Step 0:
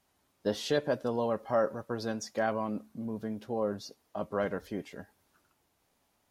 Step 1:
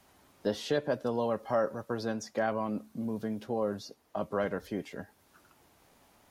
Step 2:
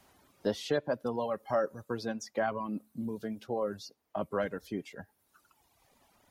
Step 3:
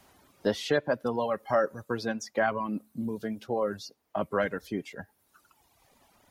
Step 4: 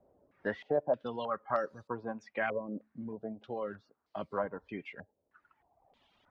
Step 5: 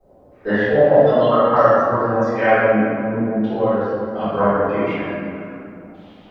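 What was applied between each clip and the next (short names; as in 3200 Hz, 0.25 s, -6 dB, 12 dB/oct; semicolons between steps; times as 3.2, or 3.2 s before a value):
three-band squash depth 40%
reverb removal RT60 1.8 s
dynamic EQ 1900 Hz, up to +5 dB, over -50 dBFS, Q 1.2; gain +3.5 dB
stepped low-pass 3.2 Hz 540–4500 Hz; gain -9 dB
reverb RT60 2.5 s, pre-delay 3 ms, DRR -20.5 dB; gain -1.5 dB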